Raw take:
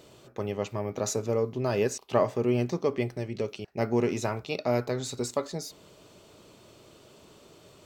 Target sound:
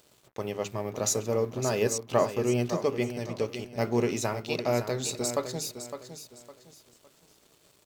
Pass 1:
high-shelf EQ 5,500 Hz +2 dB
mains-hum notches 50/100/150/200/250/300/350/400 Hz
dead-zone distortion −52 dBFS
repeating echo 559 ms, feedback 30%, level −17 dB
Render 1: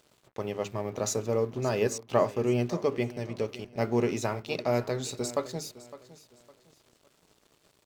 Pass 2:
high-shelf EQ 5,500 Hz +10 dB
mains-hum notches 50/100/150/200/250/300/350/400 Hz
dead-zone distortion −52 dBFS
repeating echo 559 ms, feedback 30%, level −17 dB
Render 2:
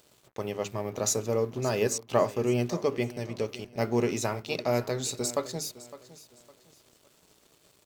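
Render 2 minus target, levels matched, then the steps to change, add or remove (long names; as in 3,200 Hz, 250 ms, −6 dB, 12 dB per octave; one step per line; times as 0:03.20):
echo-to-direct −7 dB
change: repeating echo 559 ms, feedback 30%, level −10 dB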